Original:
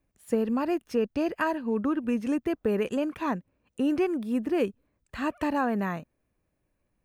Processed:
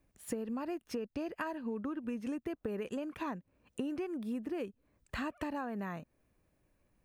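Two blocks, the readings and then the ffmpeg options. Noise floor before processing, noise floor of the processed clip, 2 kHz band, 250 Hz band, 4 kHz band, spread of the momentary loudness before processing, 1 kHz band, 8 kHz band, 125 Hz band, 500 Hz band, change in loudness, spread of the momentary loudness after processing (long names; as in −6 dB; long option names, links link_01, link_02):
−77 dBFS, −78 dBFS, −9.5 dB, −10.5 dB, −8.0 dB, 6 LU, −11.0 dB, can't be measured, −9.0 dB, −11.5 dB, −11.0 dB, 4 LU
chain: -af "acompressor=threshold=-38dB:ratio=8,volume=2.5dB"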